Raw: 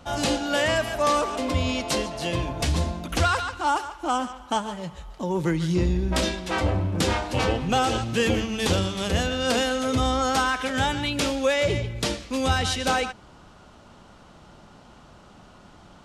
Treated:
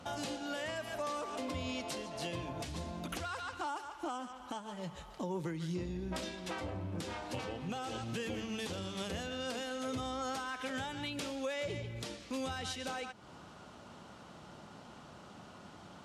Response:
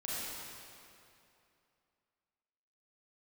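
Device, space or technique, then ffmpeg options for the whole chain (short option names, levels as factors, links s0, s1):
podcast mastering chain: -af "highpass=100,acompressor=threshold=0.0141:ratio=2.5,alimiter=level_in=1.26:limit=0.0631:level=0:latency=1:release=369,volume=0.794,volume=0.794" -ar 44100 -c:a libmp3lame -b:a 96k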